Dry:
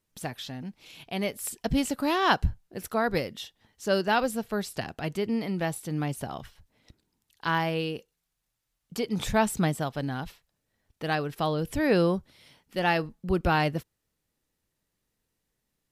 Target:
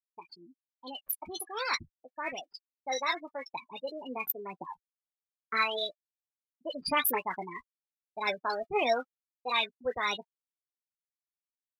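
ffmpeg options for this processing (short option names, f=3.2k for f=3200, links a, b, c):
-filter_complex "[0:a]afftfilt=real='re*gte(hypot(re,im),0.0631)':imag='im*gte(hypot(re,im),0.0631)':win_size=1024:overlap=0.75,agate=range=-33dB:threshold=-44dB:ratio=3:detection=peak,aemphasis=mode=production:type=riaa,afftdn=nr=22:nf=-53,lowshelf=f=190:g=-10,dynaudnorm=f=680:g=11:m=12.5dB,aphaser=in_gain=1:out_gain=1:delay=3.1:decay=0.46:speed=1.6:type=triangular,asplit=2[a][b];[b]adelay=16,volume=-9.5dB[c];[a][c]amix=inputs=2:normalize=0,acrossover=split=1200[d][e];[e]adelay=40[f];[d][f]amix=inputs=2:normalize=0,asetrate=59535,aresample=44100,volume=-8.5dB"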